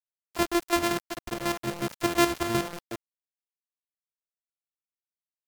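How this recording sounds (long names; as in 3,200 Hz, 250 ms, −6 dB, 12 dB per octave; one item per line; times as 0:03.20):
a buzz of ramps at a fixed pitch in blocks of 128 samples
chopped level 5.5 Hz, depth 60%, duty 35%
a quantiser's noise floor 6 bits, dither none
MP3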